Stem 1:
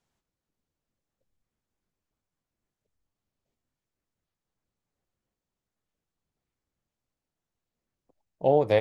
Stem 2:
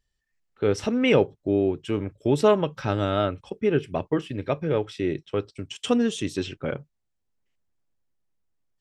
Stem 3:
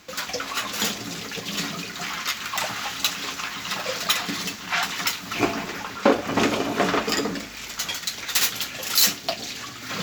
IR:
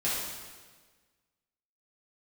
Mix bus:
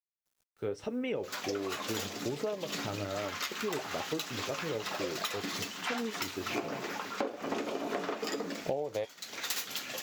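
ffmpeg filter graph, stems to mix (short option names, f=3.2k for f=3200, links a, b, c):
-filter_complex "[0:a]highshelf=f=2.9k:g=11.5,adelay=250,volume=1dB[a];[1:a]flanger=delay=6:depth=5.2:regen=65:speed=1.2:shape=triangular,volume=-7dB[b];[2:a]highpass=170,adelay=1150,volume=-6.5dB[c];[a][b][c]amix=inputs=3:normalize=0,adynamicequalizer=threshold=0.0112:dfrequency=500:dqfactor=0.73:tfrequency=500:tqfactor=0.73:attack=5:release=100:ratio=0.375:range=3.5:mode=boostabove:tftype=bell,acrusher=bits=10:mix=0:aa=0.000001,acompressor=threshold=-31dB:ratio=12"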